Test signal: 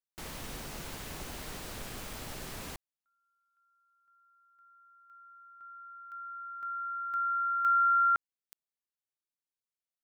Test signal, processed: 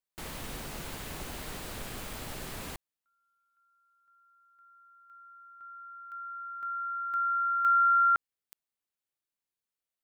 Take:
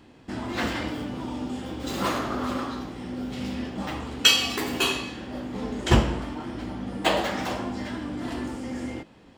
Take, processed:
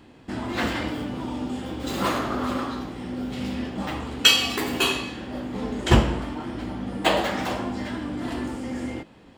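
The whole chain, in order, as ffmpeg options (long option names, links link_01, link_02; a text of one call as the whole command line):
ffmpeg -i in.wav -af "equalizer=frequency=5700:width=2.5:gain=-3,volume=2dB" out.wav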